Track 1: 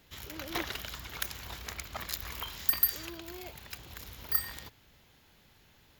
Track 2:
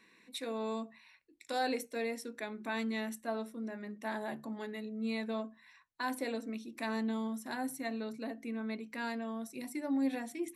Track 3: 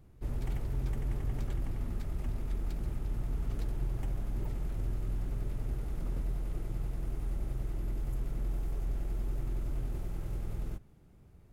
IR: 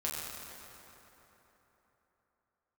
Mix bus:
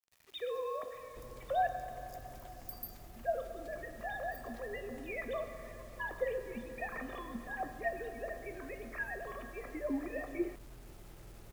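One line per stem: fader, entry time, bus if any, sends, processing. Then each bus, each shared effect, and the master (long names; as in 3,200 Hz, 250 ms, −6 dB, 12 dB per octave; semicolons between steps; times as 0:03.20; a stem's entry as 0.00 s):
−20.0 dB, 0.00 s, send −20 dB, brick-wall band-stop 1,300–4,600 Hz; automatic ducking −9 dB, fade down 0.30 s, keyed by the second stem
−3.5 dB, 0.00 s, muted 0:01.67–0:03.16, send −7 dB, three sine waves on the formant tracks; comb filter 1.7 ms, depth 74%
+0.5 dB, 0.95 s, no send, low-shelf EQ 230 Hz −12 dB; downward compressor 10 to 1, threshold −49 dBFS, peak gain reduction 11.5 dB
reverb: on, RT60 3.7 s, pre-delay 6 ms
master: bit reduction 10 bits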